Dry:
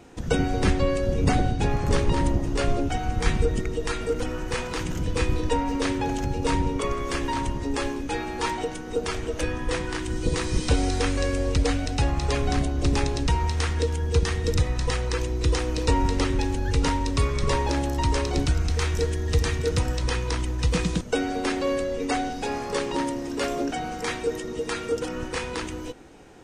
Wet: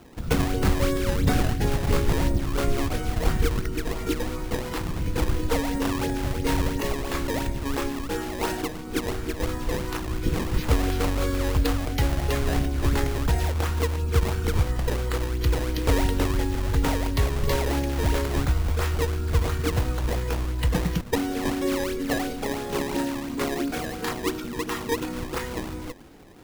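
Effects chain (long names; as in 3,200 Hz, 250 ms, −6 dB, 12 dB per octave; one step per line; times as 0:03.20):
sample-and-hold swept by an LFO 18×, swing 160% 2.9 Hz
formants moved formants −4 semitones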